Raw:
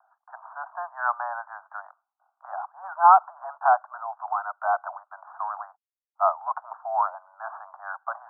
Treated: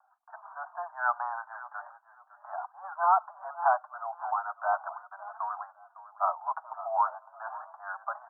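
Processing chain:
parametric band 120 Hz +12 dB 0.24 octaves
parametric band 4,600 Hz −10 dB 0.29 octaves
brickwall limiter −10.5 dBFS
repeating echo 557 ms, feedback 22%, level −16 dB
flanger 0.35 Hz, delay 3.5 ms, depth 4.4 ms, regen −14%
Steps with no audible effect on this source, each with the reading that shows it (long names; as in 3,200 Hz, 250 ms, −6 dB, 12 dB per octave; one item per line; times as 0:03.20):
parametric band 120 Hz: nothing at its input below 540 Hz
parametric band 4,600 Hz: nothing at its input above 1,600 Hz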